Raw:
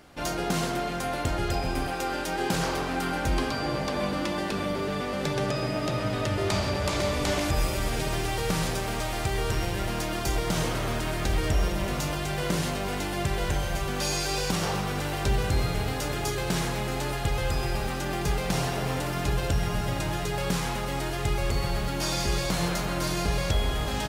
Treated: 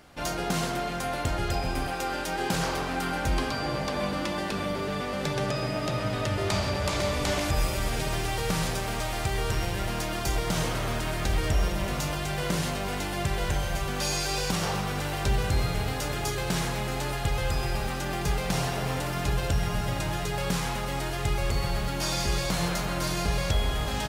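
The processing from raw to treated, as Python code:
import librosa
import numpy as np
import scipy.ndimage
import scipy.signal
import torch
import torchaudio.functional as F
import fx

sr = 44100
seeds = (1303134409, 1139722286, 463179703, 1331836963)

y = fx.peak_eq(x, sr, hz=330.0, db=-3.0, octaves=1.0)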